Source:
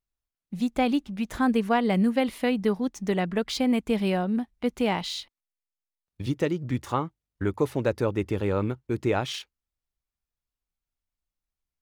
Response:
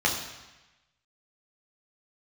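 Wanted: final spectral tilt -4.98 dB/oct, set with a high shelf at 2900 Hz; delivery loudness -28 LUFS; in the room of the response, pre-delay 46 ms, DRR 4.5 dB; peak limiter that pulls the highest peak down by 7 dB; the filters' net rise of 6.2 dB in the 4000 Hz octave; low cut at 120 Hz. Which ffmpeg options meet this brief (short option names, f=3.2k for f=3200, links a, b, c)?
-filter_complex "[0:a]highpass=120,highshelf=f=2.9k:g=5,equalizer=f=4k:t=o:g=4,alimiter=limit=-16.5dB:level=0:latency=1,asplit=2[a][b];[1:a]atrim=start_sample=2205,adelay=46[c];[b][c]afir=irnorm=-1:irlink=0,volume=-18dB[d];[a][d]amix=inputs=2:normalize=0,volume=-1dB"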